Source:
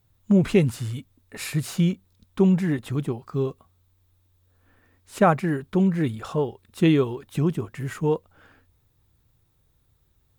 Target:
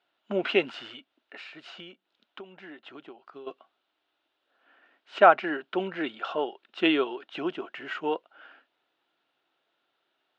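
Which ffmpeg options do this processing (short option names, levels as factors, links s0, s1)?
-filter_complex "[0:a]highpass=f=340:w=0.5412,highpass=f=340:w=1.3066,equalizer=f=460:t=q:w=4:g=-7,equalizer=f=680:t=q:w=4:g=6,equalizer=f=1400:t=q:w=4:g=9,equalizer=f=2900:t=q:w=4:g=9,lowpass=f=4100:w=0.5412,lowpass=f=4100:w=1.3066,asplit=3[s0][s1][s2];[s0]afade=t=out:st=0.95:d=0.02[s3];[s1]acompressor=threshold=0.00794:ratio=10,afade=t=in:st=0.95:d=0.02,afade=t=out:st=3.46:d=0.02[s4];[s2]afade=t=in:st=3.46:d=0.02[s5];[s3][s4][s5]amix=inputs=3:normalize=0,equalizer=f=1200:w=3.8:g=-4.5"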